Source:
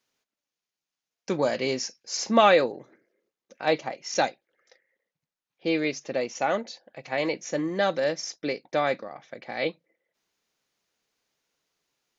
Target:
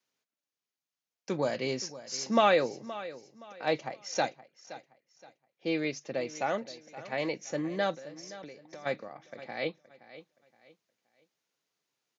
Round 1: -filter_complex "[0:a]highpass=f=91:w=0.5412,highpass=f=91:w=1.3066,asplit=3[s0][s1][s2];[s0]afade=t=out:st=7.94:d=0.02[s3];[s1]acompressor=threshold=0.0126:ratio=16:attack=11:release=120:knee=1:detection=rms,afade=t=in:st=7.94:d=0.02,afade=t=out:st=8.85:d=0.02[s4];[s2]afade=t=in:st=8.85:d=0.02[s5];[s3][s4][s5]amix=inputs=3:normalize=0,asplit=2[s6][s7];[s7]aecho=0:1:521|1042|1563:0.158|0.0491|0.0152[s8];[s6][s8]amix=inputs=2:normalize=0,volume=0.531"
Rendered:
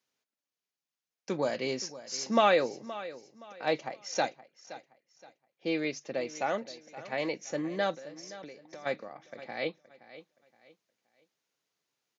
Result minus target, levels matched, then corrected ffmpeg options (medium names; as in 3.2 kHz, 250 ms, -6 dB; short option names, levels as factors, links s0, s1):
125 Hz band -2.5 dB
-filter_complex "[0:a]highpass=f=91:w=0.5412,highpass=f=91:w=1.3066,adynamicequalizer=threshold=0.00501:dfrequency=120:dqfactor=1.5:tfrequency=120:tqfactor=1.5:attack=5:release=100:ratio=0.375:range=2.5:mode=boostabove:tftype=bell,asplit=3[s0][s1][s2];[s0]afade=t=out:st=7.94:d=0.02[s3];[s1]acompressor=threshold=0.0126:ratio=16:attack=11:release=120:knee=1:detection=rms,afade=t=in:st=7.94:d=0.02,afade=t=out:st=8.85:d=0.02[s4];[s2]afade=t=in:st=8.85:d=0.02[s5];[s3][s4][s5]amix=inputs=3:normalize=0,asplit=2[s6][s7];[s7]aecho=0:1:521|1042|1563:0.158|0.0491|0.0152[s8];[s6][s8]amix=inputs=2:normalize=0,volume=0.531"